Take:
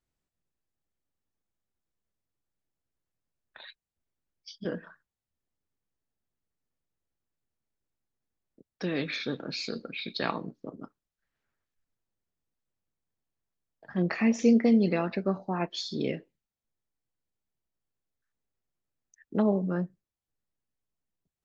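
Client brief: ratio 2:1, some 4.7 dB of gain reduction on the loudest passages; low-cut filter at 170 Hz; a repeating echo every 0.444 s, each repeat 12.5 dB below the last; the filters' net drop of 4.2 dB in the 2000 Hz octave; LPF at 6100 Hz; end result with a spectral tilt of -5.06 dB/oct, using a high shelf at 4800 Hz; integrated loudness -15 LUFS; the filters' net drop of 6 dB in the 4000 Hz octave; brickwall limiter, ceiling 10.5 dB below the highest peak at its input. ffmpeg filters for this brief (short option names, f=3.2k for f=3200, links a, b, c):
-af "highpass=170,lowpass=6.1k,equalizer=f=2k:t=o:g=-4,equalizer=f=4k:t=o:g=-8,highshelf=f=4.8k:g=6,acompressor=threshold=-26dB:ratio=2,alimiter=level_in=1.5dB:limit=-24dB:level=0:latency=1,volume=-1.5dB,aecho=1:1:444|888|1332:0.237|0.0569|0.0137,volume=22dB"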